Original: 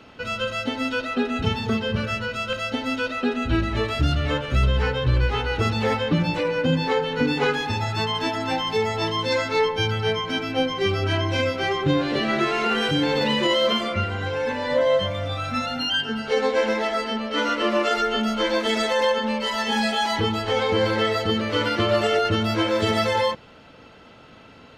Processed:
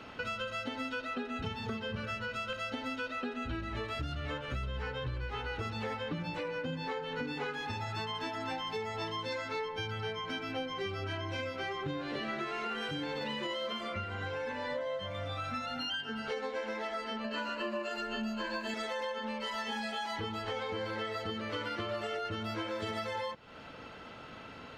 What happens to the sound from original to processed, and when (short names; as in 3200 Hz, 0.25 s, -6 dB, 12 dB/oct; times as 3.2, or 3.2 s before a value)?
17.24–18.74 ripple EQ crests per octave 1.4, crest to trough 14 dB
whole clip: bell 1400 Hz +4 dB 1.9 oct; compressor, threshold -33 dBFS; gain -2.5 dB